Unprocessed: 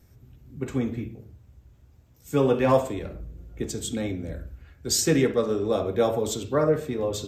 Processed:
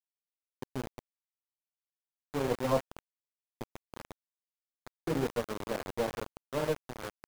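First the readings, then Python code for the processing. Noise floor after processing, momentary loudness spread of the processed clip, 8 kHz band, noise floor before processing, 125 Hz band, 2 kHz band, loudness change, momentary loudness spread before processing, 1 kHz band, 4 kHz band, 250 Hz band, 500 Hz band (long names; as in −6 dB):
below −85 dBFS, 18 LU, −19.5 dB, −56 dBFS, −11.5 dB, −7.0 dB, −9.5 dB, 17 LU, −8.0 dB, −12.5 dB, −12.0 dB, −11.0 dB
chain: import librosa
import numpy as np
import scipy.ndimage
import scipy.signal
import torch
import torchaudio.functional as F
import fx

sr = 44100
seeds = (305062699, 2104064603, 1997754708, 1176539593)

y = fx.cheby_harmonics(x, sr, harmonics=(2, 3, 7, 8), levels_db=(-8, -31, -33, -40), full_scale_db=-8.0)
y = scipy.signal.sosfilt(scipy.signal.butter(4, 1100.0, 'lowpass', fs=sr, output='sos'), y)
y = np.where(np.abs(y) >= 10.0 ** (-23.5 / 20.0), y, 0.0)
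y = y * 10.0 ** (-8.5 / 20.0)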